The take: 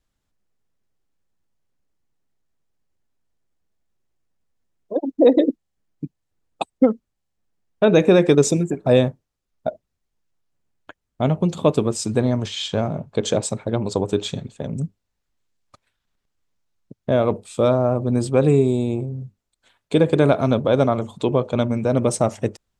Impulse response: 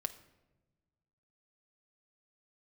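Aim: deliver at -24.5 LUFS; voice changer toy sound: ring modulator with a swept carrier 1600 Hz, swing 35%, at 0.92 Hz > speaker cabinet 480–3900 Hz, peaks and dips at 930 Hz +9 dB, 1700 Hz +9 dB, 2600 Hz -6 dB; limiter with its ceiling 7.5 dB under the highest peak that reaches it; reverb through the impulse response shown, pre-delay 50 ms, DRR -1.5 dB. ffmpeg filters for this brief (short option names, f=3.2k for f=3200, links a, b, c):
-filter_complex "[0:a]alimiter=limit=-10dB:level=0:latency=1,asplit=2[a][b];[1:a]atrim=start_sample=2205,adelay=50[c];[b][c]afir=irnorm=-1:irlink=0,volume=2dB[d];[a][d]amix=inputs=2:normalize=0,aeval=exprs='val(0)*sin(2*PI*1600*n/s+1600*0.35/0.92*sin(2*PI*0.92*n/s))':c=same,highpass=480,equalizer=f=930:t=q:w=4:g=9,equalizer=f=1.7k:t=q:w=4:g=9,equalizer=f=2.6k:t=q:w=4:g=-6,lowpass=f=3.9k:w=0.5412,lowpass=f=3.9k:w=1.3066,volume=-9dB"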